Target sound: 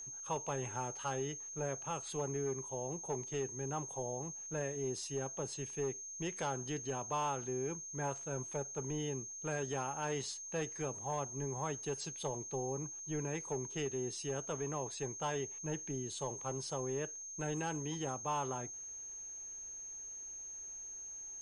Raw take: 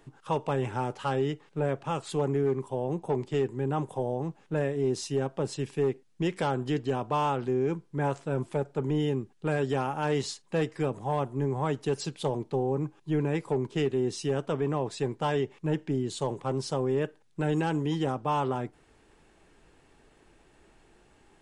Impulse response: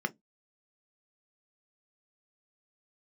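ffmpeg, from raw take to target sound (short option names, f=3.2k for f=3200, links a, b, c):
-af "equalizer=f=230:t=o:w=2:g=-6,aeval=exprs='val(0)+0.0141*sin(2*PI*6400*n/s)':c=same,volume=-7.5dB"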